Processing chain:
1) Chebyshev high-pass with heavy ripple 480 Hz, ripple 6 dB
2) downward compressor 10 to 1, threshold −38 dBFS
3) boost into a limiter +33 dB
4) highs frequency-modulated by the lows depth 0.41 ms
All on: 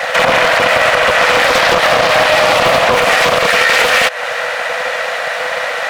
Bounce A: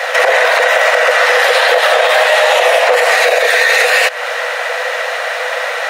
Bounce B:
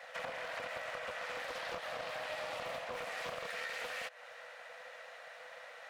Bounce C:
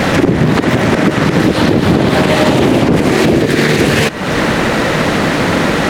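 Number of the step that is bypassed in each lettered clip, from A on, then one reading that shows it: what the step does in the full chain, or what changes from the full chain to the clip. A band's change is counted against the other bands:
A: 4, 1 kHz band −2.0 dB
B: 3, change in crest factor +3.5 dB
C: 1, 250 Hz band +21.0 dB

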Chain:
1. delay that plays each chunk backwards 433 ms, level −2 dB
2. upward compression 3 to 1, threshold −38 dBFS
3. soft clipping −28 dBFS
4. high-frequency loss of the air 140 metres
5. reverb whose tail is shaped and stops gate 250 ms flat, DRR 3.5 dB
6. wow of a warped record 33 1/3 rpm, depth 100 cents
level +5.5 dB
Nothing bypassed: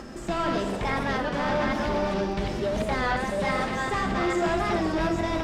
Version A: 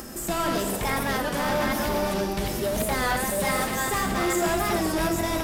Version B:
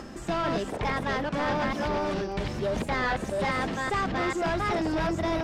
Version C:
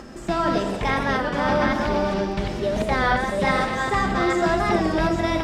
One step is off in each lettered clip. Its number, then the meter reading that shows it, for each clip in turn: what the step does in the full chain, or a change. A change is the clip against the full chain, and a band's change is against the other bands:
4, 8 kHz band +13.0 dB
5, change in crest factor −6.0 dB
3, distortion level −10 dB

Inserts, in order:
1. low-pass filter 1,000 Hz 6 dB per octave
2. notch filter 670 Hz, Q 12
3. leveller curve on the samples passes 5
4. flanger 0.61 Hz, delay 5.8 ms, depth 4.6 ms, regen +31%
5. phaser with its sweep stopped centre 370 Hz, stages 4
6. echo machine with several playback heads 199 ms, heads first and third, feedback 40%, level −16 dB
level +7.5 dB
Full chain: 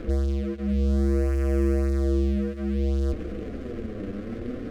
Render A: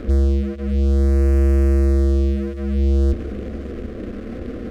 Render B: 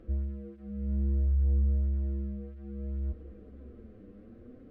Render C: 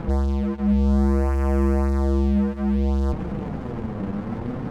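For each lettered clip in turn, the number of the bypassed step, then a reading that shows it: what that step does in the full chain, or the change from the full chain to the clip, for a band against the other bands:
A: 4, change in crest factor −3.5 dB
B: 3, change in momentary loudness spread +13 LU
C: 5, 1 kHz band +9.0 dB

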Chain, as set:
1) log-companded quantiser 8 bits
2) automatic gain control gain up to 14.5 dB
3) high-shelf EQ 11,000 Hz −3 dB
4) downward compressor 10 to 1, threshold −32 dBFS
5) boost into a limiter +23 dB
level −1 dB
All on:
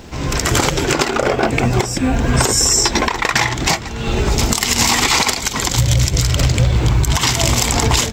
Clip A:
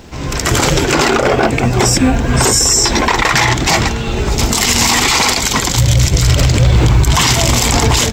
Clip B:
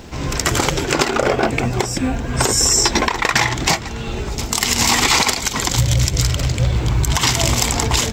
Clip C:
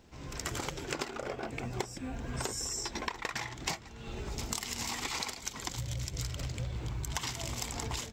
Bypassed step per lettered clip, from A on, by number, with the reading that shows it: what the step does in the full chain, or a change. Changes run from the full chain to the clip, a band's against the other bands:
4, average gain reduction 9.0 dB
2, change in crest factor +2.0 dB
5, change in crest factor +8.5 dB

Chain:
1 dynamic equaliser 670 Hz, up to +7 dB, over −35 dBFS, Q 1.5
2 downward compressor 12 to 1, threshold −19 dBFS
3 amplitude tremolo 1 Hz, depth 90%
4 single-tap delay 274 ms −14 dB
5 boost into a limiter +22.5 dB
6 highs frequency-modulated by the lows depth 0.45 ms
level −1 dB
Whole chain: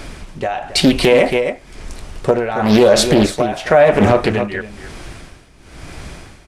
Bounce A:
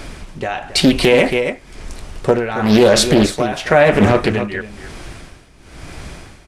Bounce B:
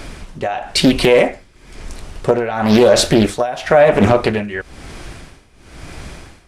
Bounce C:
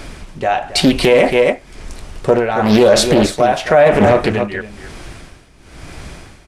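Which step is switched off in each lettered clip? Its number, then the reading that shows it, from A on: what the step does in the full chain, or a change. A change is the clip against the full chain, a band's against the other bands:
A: 1, change in momentary loudness spread +3 LU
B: 4, change in momentary loudness spread −5 LU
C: 2, average gain reduction 2.0 dB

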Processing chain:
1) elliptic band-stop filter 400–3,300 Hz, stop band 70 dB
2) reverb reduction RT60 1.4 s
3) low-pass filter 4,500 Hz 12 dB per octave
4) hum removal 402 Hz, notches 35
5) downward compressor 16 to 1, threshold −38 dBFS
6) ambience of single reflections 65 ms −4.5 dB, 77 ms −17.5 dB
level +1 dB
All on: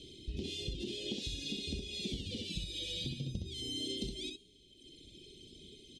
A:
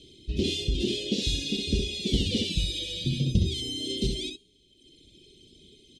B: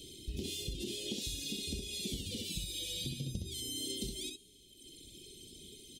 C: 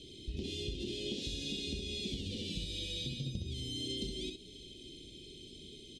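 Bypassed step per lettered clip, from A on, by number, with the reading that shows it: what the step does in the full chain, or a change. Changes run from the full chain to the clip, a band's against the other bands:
5, average gain reduction 9.0 dB
3, 8 kHz band +9.0 dB
2, change in momentary loudness spread −4 LU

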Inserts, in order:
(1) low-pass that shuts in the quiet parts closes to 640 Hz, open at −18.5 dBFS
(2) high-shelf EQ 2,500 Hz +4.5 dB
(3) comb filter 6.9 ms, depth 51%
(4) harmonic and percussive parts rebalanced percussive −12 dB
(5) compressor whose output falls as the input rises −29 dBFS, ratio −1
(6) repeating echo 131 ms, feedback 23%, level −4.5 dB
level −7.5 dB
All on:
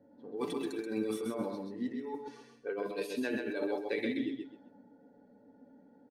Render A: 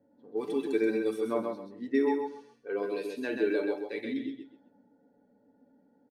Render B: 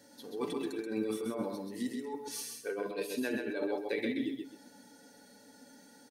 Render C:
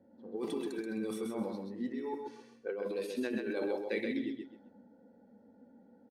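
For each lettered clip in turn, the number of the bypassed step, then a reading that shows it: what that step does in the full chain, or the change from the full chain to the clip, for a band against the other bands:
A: 5, 4 kHz band −5.0 dB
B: 1, 8 kHz band +9.5 dB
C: 3, 125 Hz band +2.0 dB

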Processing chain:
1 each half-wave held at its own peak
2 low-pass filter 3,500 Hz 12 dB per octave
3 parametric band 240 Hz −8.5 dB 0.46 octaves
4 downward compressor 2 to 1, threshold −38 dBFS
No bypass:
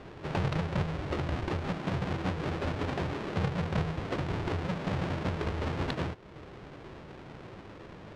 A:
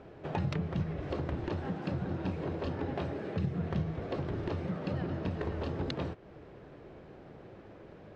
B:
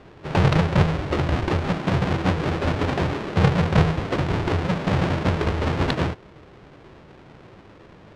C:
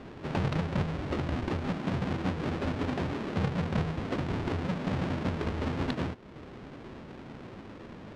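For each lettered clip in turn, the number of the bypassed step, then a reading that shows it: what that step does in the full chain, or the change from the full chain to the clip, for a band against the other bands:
1, distortion level −5 dB
4, average gain reduction 7.5 dB
3, 250 Hz band +3.5 dB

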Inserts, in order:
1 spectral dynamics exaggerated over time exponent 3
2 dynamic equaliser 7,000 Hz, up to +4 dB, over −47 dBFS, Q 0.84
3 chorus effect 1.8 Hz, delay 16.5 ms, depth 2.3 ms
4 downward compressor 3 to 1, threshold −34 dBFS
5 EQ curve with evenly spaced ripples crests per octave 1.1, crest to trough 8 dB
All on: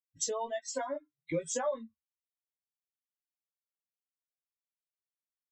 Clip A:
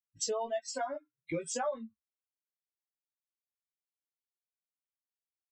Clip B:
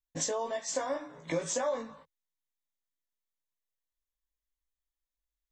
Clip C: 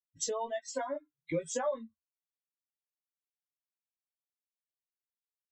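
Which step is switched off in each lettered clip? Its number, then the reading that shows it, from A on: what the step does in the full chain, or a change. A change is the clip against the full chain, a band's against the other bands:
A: 5, 125 Hz band −2.5 dB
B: 1, change in crest factor −2.0 dB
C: 2, 8 kHz band −2.5 dB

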